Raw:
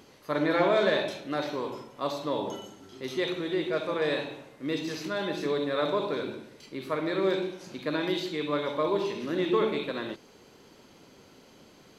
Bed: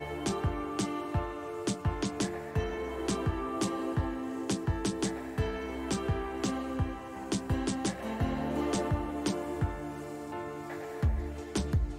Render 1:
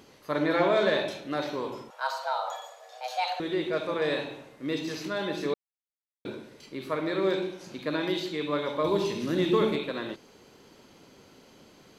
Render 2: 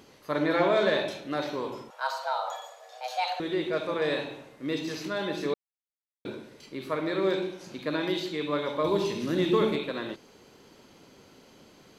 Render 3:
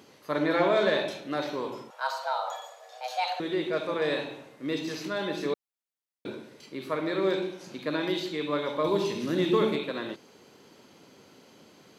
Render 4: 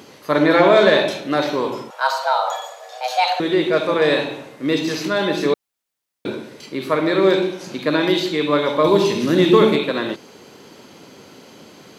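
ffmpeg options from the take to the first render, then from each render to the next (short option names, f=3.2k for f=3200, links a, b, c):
-filter_complex "[0:a]asettb=1/sr,asplit=3[a][b][c];[a]atrim=end=1.904[d];[b]atrim=start=1.9:end=3.4,asetpts=PTS-STARTPTS,afade=t=in:d=0.004:c=qsin,afade=t=out:st=1.496:d=0.004:c=qsin,afreqshift=370[e];[c]atrim=start=3.396[f];[d][e]acrossfade=d=0.004:c1=hsin:c2=qsin[g];[g][f]acrossfade=d=0.004:c1=qsin:c2=hsin,asettb=1/sr,asplit=3[h][i][j];[h]atrim=end=8.844[k];[i]atrim=start=8.84:end=9.76,asetpts=PTS-STARTPTS,afade=t=in:d=0.004:c=qsin,afade=t=out:st=0.916:d=0.004:c=qsin,bass=f=250:g=8,treble=f=4k:g=8[l];[j]atrim=start=9.756[m];[k][l]acrossfade=d=0.004:c1=hsin:c2=qsin[n];[n][m]acrossfade=d=0.004:c1=qsin:c2=hsin,asplit=3[o][p][q];[o]atrim=end=5.54,asetpts=PTS-STARTPTS,afade=t=out:st=5.536:d=0.004:c=hsin[r];[p]atrim=start=5.54:end=6.25,asetpts=PTS-STARTPTS,volume=0[s];[q]atrim=start=6.25,asetpts=PTS-STARTPTS,afade=t=in:d=0.004:c=hsin[t];[r][s][t]concat=n=3:v=0:a=1"
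-af anull
-af "highpass=110"
-af "volume=11.5dB,alimiter=limit=-2dB:level=0:latency=1"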